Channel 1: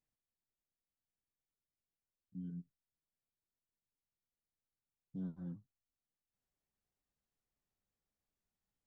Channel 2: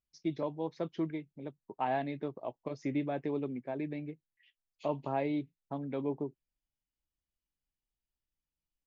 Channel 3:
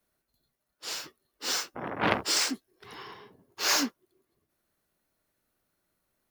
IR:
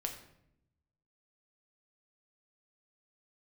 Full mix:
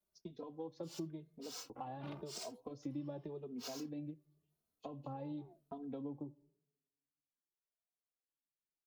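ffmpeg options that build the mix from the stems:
-filter_complex "[0:a]alimiter=level_in=16dB:limit=-24dB:level=0:latency=1,volume=-16dB,aeval=exprs='val(0)*sin(2*PI*440*n/s+440*0.55/0.76*sin(2*PI*0.76*n/s))':channel_layout=same,volume=-10.5dB[link_01];[1:a]agate=range=-24dB:threshold=-57dB:ratio=16:detection=peak,equalizer=frequency=2200:width=6.5:gain=-13,acrossover=split=220[link_02][link_03];[link_03]acompressor=threshold=-34dB:ratio=6[link_04];[link_02][link_04]amix=inputs=2:normalize=0,volume=-1dB,asplit=3[link_05][link_06][link_07];[link_06]volume=-20dB[link_08];[2:a]volume=-8dB[link_09];[link_07]apad=whole_len=278025[link_10];[link_09][link_10]sidechaincompress=threshold=-48dB:ratio=3:attack=12:release=157[link_11];[link_05][link_11]amix=inputs=2:normalize=0,equalizer=frequency=1800:width_type=o:width=0.81:gain=-11,acompressor=threshold=-40dB:ratio=6,volume=0dB[link_12];[3:a]atrim=start_sample=2205[link_13];[link_08][link_13]afir=irnorm=-1:irlink=0[link_14];[link_01][link_12][link_14]amix=inputs=3:normalize=0,asplit=2[link_15][link_16];[link_16]adelay=2.9,afreqshift=0.92[link_17];[link_15][link_17]amix=inputs=2:normalize=1"

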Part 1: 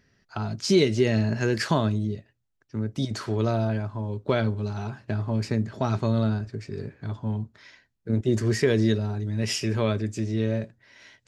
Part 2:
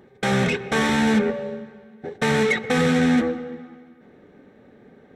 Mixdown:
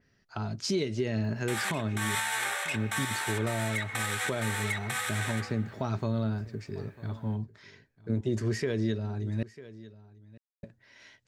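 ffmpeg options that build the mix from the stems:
ffmpeg -i stem1.wav -i stem2.wav -filter_complex "[0:a]adynamicequalizer=threshold=0.00501:dfrequency=3700:dqfactor=0.7:tfrequency=3700:tqfactor=0.7:attack=5:release=100:ratio=0.375:range=2:mode=cutabove:tftype=highshelf,volume=-3.5dB,asplit=3[link_01][link_02][link_03];[link_01]atrim=end=9.43,asetpts=PTS-STARTPTS,afade=type=out:start_time=9.426:duration=0.004:curve=hsin[link_04];[link_02]atrim=start=9.43:end=10.63,asetpts=PTS-STARTPTS,volume=0[link_05];[link_03]atrim=start=10.63,asetpts=PTS-STARTPTS,afade=type=in:duration=0.004:curve=hsin[link_06];[link_04][link_05][link_06]concat=n=3:v=0:a=1,asplit=3[link_07][link_08][link_09];[link_08]volume=-22dB[link_10];[1:a]highpass=frequency=870:width=0.5412,highpass=frequency=870:width=1.3066,alimiter=limit=-17dB:level=0:latency=1:release=97,aexciter=amount=5.2:drive=5.2:freq=7800,adelay=1250,volume=-0.5dB,asplit=2[link_11][link_12];[link_12]volume=-4.5dB[link_13];[link_09]apad=whole_len=282481[link_14];[link_11][link_14]sidechaincompress=threshold=-28dB:ratio=8:attack=5.4:release=124[link_15];[link_10][link_13]amix=inputs=2:normalize=0,aecho=0:1:947:1[link_16];[link_07][link_15][link_16]amix=inputs=3:normalize=0,alimiter=limit=-20dB:level=0:latency=1:release=300" out.wav

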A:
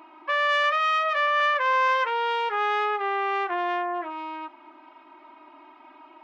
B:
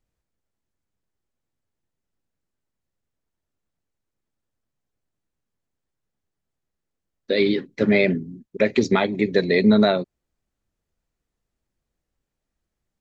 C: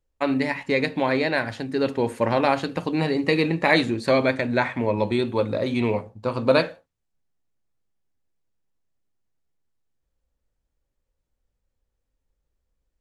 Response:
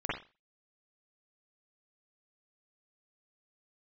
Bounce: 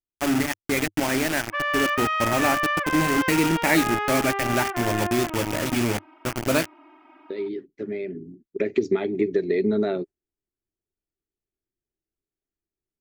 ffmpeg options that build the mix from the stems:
-filter_complex "[0:a]highshelf=frequency=5300:gain=-6,adelay=1250,volume=-0.5dB[link_01];[1:a]agate=range=-9dB:threshold=-35dB:ratio=16:detection=peak,equalizer=frequency=400:width_type=o:width=0.59:gain=13.5,acompressor=threshold=-13dB:ratio=3,volume=-6dB,afade=type=in:start_time=8.12:duration=0.21:silence=0.375837[link_02];[2:a]acrusher=bits=3:mix=0:aa=0.000001,volume=-1.5dB[link_03];[link_01][link_02][link_03]amix=inputs=3:normalize=0,equalizer=frequency=100:width_type=o:width=0.33:gain=3,equalizer=frequency=315:width_type=o:width=0.33:gain=5,equalizer=frequency=500:width_type=o:width=0.33:gain=-9,equalizer=frequency=1000:width_type=o:width=0.33:gain=-6,equalizer=frequency=4000:width_type=o:width=0.33:gain=-7"

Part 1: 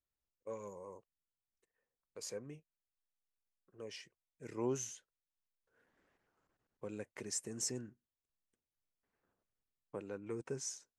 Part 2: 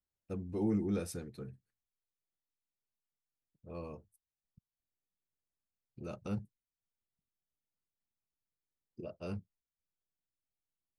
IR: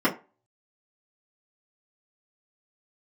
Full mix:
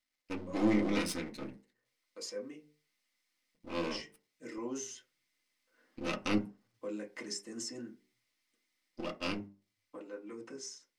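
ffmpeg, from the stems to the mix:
-filter_complex "[0:a]equalizer=frequency=200:width_type=o:width=0.77:gain=-5,alimiter=level_in=11dB:limit=-24dB:level=0:latency=1:release=188,volume=-11dB,volume=-13.5dB,asplit=2[link_01][link_02];[link_02]volume=-5.5dB[link_03];[1:a]equalizer=frequency=2100:width_type=o:width=0.5:gain=14,bandreject=frequency=7000:width=12,aeval=exprs='max(val(0),0)':channel_layout=same,volume=0.5dB,asplit=2[link_04][link_05];[link_05]volume=-15dB[link_06];[2:a]atrim=start_sample=2205[link_07];[link_03][link_06]amix=inputs=2:normalize=0[link_08];[link_08][link_07]afir=irnorm=-1:irlink=0[link_09];[link_01][link_04][link_09]amix=inputs=3:normalize=0,equalizer=frequency=4800:width=0.56:gain=13,bandreject=frequency=50:width_type=h:width=6,bandreject=frequency=100:width_type=h:width=6,bandreject=frequency=150:width_type=h:width=6,bandreject=frequency=200:width_type=h:width=6,bandreject=frequency=250:width_type=h:width=6,bandreject=frequency=300:width_type=h:width=6,bandreject=frequency=350:width_type=h:width=6,bandreject=frequency=400:width_type=h:width=6,bandreject=frequency=450:width_type=h:width=6,dynaudnorm=framelen=300:gausssize=13:maxgain=4dB"

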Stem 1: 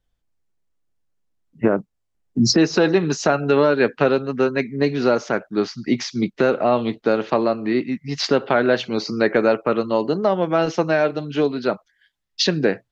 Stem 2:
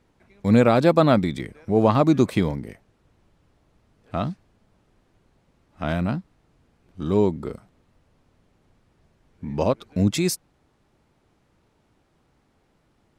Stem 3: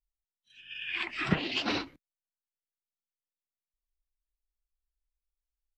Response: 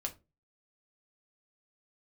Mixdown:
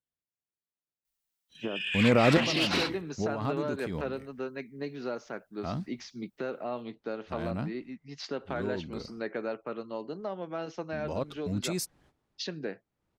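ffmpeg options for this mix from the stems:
-filter_complex "[0:a]highpass=110,volume=-17.5dB,asplit=2[link_01][link_02];[1:a]agate=range=-15dB:threshold=-57dB:ratio=16:detection=peak,alimiter=limit=-14dB:level=0:latency=1:release=23,adelay=1500,volume=1.5dB[link_03];[2:a]aemphasis=mode=production:type=50kf,asplit=2[link_04][link_05];[link_05]highpass=frequency=720:poles=1,volume=18dB,asoftclip=type=tanh:threshold=-12dB[link_06];[link_04][link_06]amix=inputs=2:normalize=0,lowpass=frequency=4800:poles=1,volume=-6dB,adelay=1050,volume=-7dB[link_07];[link_02]apad=whole_len=647570[link_08];[link_03][link_08]sidechaincompress=threshold=-46dB:ratio=4:attack=10:release=368[link_09];[link_01][link_09][link_07]amix=inputs=3:normalize=0"

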